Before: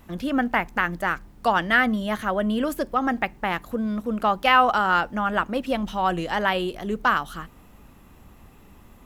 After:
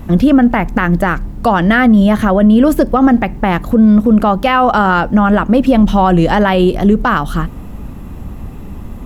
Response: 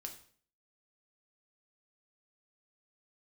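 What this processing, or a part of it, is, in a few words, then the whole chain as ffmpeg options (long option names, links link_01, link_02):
mastering chain: -af "equalizer=frequency=380:width_type=o:width=0.77:gain=-2,acompressor=threshold=-23dB:ratio=2.5,tiltshelf=frequency=640:gain=7,alimiter=level_in=18dB:limit=-1dB:release=50:level=0:latency=1,volume=-1dB"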